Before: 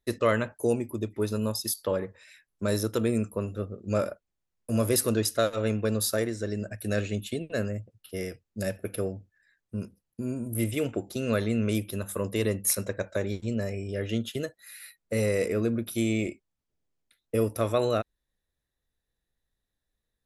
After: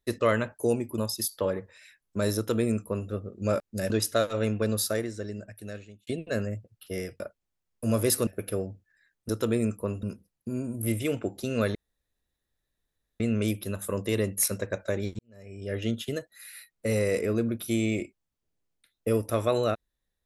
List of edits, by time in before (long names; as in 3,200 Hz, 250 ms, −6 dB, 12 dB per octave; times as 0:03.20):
0:00.98–0:01.44: remove
0:02.82–0:03.56: duplicate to 0:09.75
0:04.06–0:05.13: swap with 0:08.43–0:08.73
0:05.98–0:07.30: fade out
0:11.47: splice in room tone 1.45 s
0:13.46–0:14.01: fade in quadratic